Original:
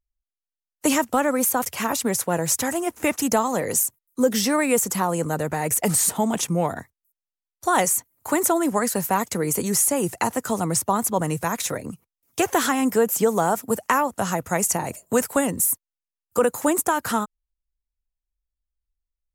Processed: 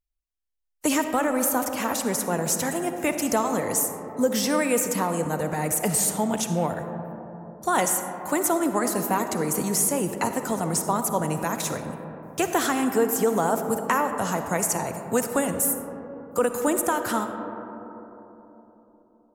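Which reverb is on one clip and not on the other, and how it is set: algorithmic reverb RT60 3.8 s, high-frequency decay 0.25×, pre-delay 20 ms, DRR 6.5 dB; trim -3 dB

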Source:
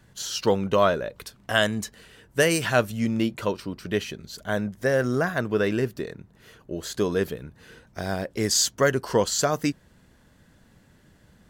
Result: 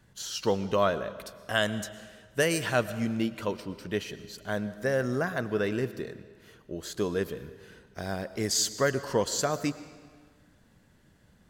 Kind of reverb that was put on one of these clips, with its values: algorithmic reverb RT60 1.6 s, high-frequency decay 0.9×, pre-delay 75 ms, DRR 14 dB; trim -5 dB

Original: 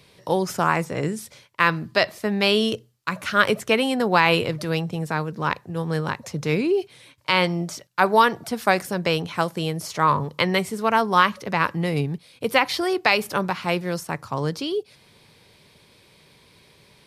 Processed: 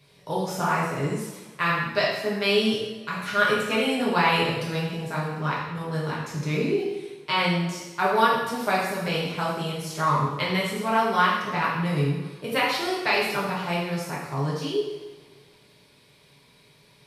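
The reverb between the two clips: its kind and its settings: two-slope reverb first 0.95 s, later 2.9 s, from -21 dB, DRR -6.5 dB; trim -10 dB

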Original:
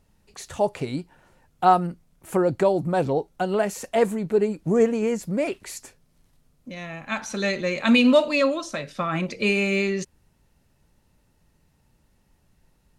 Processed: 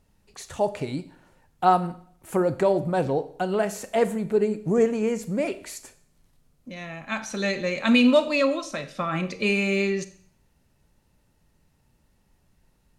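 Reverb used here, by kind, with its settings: Schroeder reverb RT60 0.58 s, combs from 29 ms, DRR 13 dB; trim -1.5 dB

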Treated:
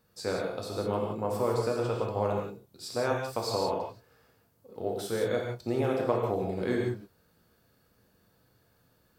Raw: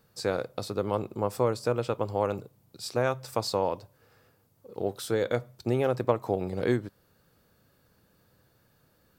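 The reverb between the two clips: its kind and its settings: gated-style reverb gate 200 ms flat, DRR -1.5 dB; trim -5 dB

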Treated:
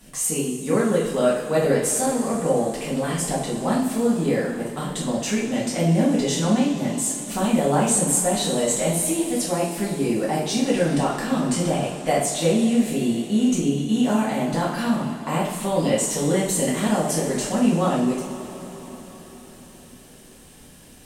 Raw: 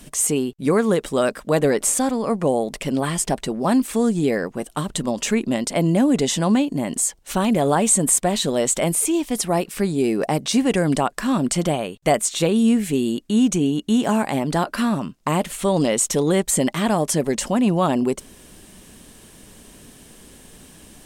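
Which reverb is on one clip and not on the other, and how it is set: two-slope reverb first 0.55 s, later 4.8 s, from -16 dB, DRR -7.5 dB; trim -10 dB

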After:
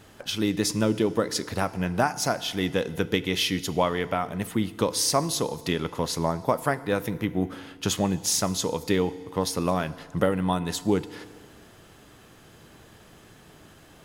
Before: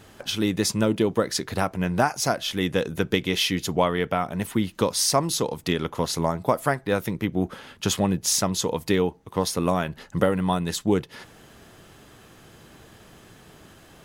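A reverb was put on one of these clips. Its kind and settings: FDN reverb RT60 1.8 s, high-frequency decay 0.9×, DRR 15 dB; trim -2 dB

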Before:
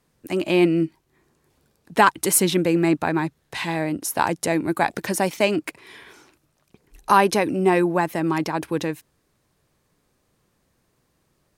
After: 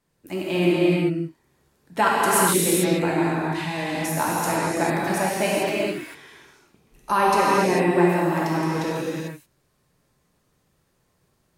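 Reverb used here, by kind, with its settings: gated-style reverb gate 470 ms flat, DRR -7 dB; trim -7.5 dB

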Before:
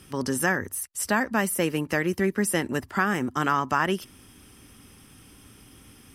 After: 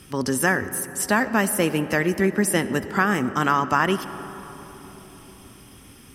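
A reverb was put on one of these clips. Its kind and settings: algorithmic reverb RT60 4.5 s, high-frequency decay 0.3×, pre-delay 40 ms, DRR 12.5 dB; trim +3.5 dB

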